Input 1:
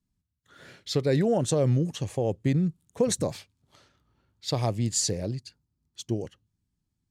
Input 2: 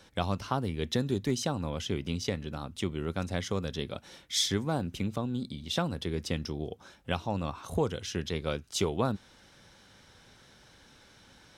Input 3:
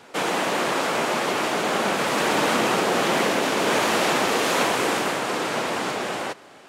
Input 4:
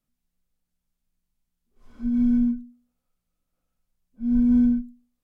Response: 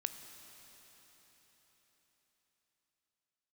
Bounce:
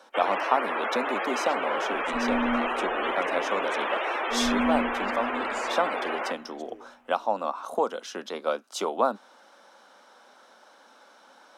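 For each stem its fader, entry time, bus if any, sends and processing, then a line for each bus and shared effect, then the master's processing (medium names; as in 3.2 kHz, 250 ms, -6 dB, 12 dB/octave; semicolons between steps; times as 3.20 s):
-16.0 dB, 0.60 s, bus A, send -22.5 dB, none
-2.0 dB, 0.00 s, no bus, no send, steep high-pass 220 Hz 48 dB/octave; high-order bell 870 Hz +11.5 dB
-1.5 dB, 0.00 s, bus A, send -16 dB, gate with hold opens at -36 dBFS; frequency weighting A; loudest bins only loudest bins 64
-4.0 dB, 0.10 s, bus A, send -5.5 dB, none
bus A: 0.0 dB, brick-wall FIR high-pass 260 Hz; peak limiter -22.5 dBFS, peak gain reduction 8.5 dB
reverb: on, RT60 4.7 s, pre-delay 15 ms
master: none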